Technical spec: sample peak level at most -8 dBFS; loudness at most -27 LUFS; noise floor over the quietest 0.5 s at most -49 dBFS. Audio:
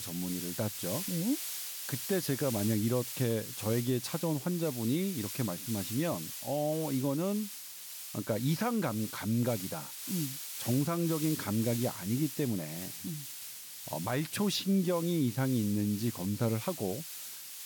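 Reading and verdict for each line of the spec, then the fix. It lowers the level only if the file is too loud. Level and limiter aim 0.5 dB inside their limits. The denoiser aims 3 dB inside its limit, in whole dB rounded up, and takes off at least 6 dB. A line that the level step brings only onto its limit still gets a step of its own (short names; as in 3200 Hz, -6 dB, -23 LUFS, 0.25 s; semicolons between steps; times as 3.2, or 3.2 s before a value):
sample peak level -19.5 dBFS: OK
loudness -33.0 LUFS: OK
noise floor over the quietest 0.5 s -45 dBFS: fail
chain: denoiser 7 dB, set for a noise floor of -45 dBFS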